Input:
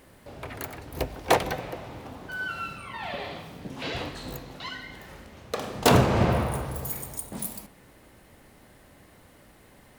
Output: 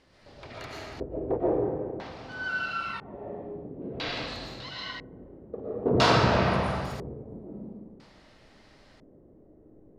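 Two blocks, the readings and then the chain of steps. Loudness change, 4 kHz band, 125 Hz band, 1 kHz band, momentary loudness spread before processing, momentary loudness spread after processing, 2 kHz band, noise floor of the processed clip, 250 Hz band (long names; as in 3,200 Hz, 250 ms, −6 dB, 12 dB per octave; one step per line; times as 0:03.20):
−0.5 dB, +1.0 dB, −3.0 dB, −1.0 dB, 19 LU, 20 LU, +1.0 dB, −57 dBFS, −0.5 dB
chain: comb and all-pass reverb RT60 1.4 s, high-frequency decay 0.85×, pre-delay 80 ms, DRR −6 dB
dynamic equaliser 1,400 Hz, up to +5 dB, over −34 dBFS, Q 0.85
auto-filter low-pass square 0.5 Hz 400–4,900 Hz
level −9 dB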